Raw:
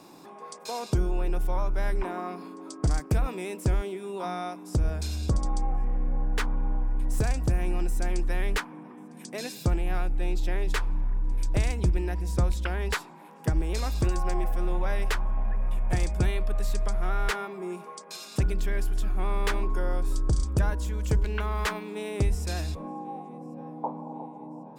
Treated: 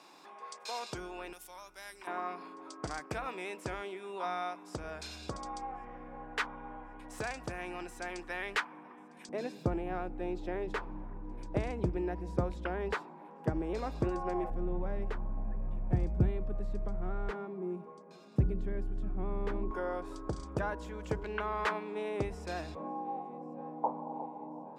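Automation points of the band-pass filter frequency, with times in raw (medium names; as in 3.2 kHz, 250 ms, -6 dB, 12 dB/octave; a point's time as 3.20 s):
band-pass filter, Q 0.57
2.3 kHz
from 1.33 s 7.9 kHz
from 2.07 s 1.6 kHz
from 9.29 s 470 Hz
from 14.50 s 170 Hz
from 19.71 s 790 Hz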